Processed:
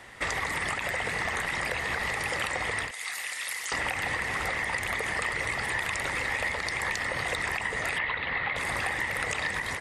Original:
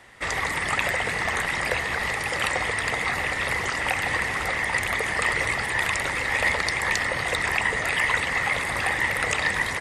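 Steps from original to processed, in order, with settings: 2.91–3.72 s: differentiator; 7.98–8.56 s: elliptic low-pass 4 kHz, stop band 50 dB; compression 5:1, threshold -30 dBFS, peak gain reduction 11.5 dB; endings held to a fixed fall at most 110 dB/s; trim +2.5 dB

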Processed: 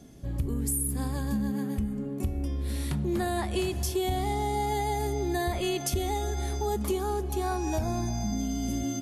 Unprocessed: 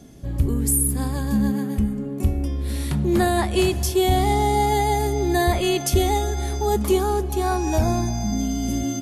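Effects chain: compression, threshold -20 dBFS, peak gain reduction 6.5 dB; trim -5 dB

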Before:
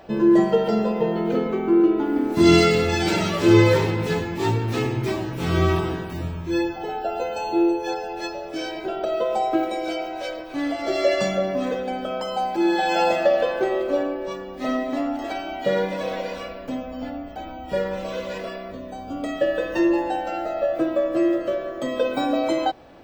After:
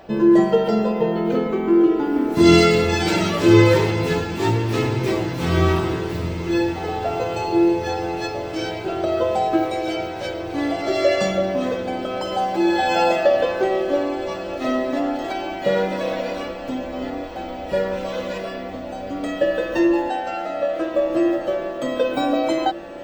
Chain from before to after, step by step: 20.09–20.95 s: frequency weighting A; on a send: echo that smears into a reverb 1370 ms, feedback 73%, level -14 dB; on the sum: trim +2 dB

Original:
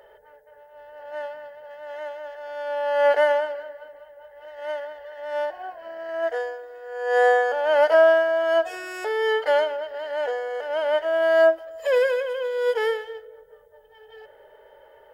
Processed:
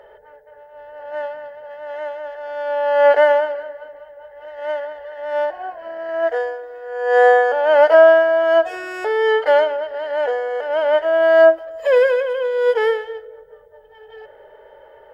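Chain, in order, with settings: treble shelf 4.1 kHz -11.5 dB; trim +6.5 dB

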